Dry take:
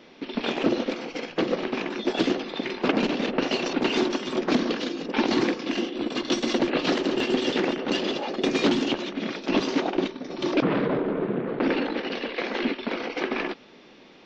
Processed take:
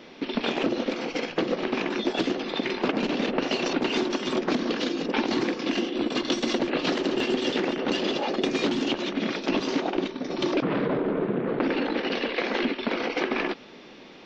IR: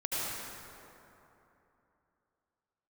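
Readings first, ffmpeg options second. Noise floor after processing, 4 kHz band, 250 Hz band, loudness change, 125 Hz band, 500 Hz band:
-46 dBFS, 0.0 dB, -1.0 dB, -0.5 dB, -1.0 dB, -0.5 dB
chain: -af "acompressor=threshold=-26dB:ratio=6,volume=4dB"

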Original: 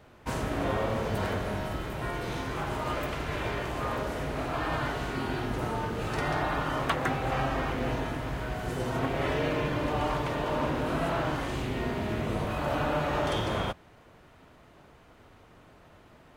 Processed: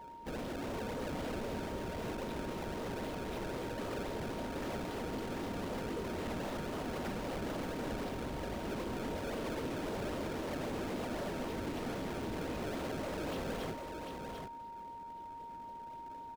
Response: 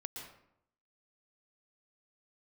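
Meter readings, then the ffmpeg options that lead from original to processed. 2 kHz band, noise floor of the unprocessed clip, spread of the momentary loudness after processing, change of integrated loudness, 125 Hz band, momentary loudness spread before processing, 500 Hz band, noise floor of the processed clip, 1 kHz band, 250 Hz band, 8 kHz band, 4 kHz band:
-11.0 dB, -56 dBFS, 7 LU, -9.0 dB, -11.5 dB, 5 LU, -7.5 dB, -47 dBFS, -10.0 dB, -5.5 dB, -4.0 dB, -8.0 dB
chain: -af "afftfilt=real='hypot(re,im)*cos(2*PI*random(0))':imag='hypot(re,im)*sin(2*PI*random(1))':win_size=512:overlap=0.75,equalizer=f=125:t=o:w=1:g=-5,equalizer=f=250:t=o:w=1:g=5,equalizer=f=500:t=o:w=1:g=5,equalizer=f=1k:t=o:w=1:g=-8,equalizer=f=2k:t=o:w=1:g=-6,equalizer=f=4k:t=o:w=1:g=10,equalizer=f=8k:t=o:w=1:g=-7,acrusher=samples=26:mix=1:aa=0.000001:lfo=1:lforange=41.6:lforate=3.8,aeval=exprs='val(0)+0.00316*sin(2*PI*930*n/s)':c=same,asoftclip=type=tanh:threshold=-39.5dB,highshelf=f=5.6k:g=-6.5,aecho=1:1:744:0.531,volume=2.5dB"

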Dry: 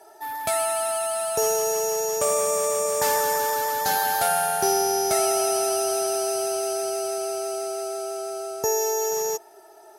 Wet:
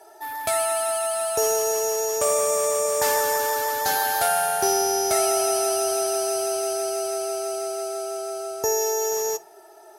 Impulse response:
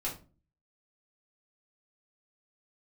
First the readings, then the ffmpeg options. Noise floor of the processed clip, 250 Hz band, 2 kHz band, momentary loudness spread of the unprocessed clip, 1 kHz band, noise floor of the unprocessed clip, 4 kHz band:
-48 dBFS, 0.0 dB, +1.5 dB, 8 LU, 0.0 dB, -49 dBFS, +1.0 dB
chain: -filter_complex "[0:a]equalizer=f=170:t=o:w=0.73:g=-7,asplit=2[a][b];[1:a]atrim=start_sample=2205[c];[b][c]afir=irnorm=-1:irlink=0,volume=-15dB[d];[a][d]amix=inputs=2:normalize=0"

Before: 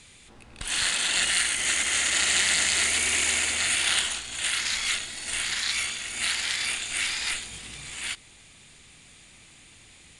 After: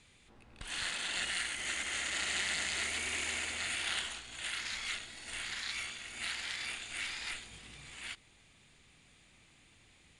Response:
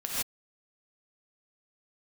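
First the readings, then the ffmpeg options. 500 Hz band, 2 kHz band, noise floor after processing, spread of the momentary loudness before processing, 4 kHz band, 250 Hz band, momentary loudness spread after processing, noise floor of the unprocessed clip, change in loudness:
-8.5 dB, -10.0 dB, -64 dBFS, 12 LU, -11.5 dB, -8.5 dB, 11 LU, -53 dBFS, -12.0 dB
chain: -af "aemphasis=mode=reproduction:type=cd,volume=-9dB"

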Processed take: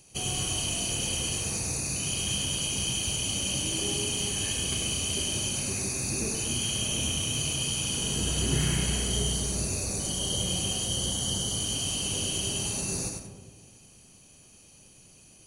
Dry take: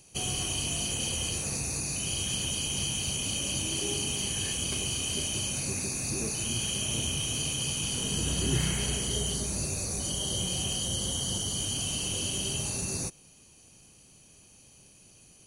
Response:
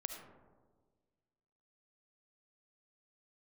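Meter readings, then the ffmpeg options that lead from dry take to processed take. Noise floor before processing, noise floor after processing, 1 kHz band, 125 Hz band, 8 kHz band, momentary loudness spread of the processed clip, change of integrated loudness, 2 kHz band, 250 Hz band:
-57 dBFS, -55 dBFS, +2.0 dB, +1.5 dB, +1.5 dB, 2 LU, +1.5 dB, +1.5 dB, +1.5 dB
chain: -filter_complex "[0:a]asplit=2[a][b];[1:a]atrim=start_sample=2205,adelay=99[c];[b][c]afir=irnorm=-1:irlink=0,volume=-1.5dB[d];[a][d]amix=inputs=2:normalize=0"

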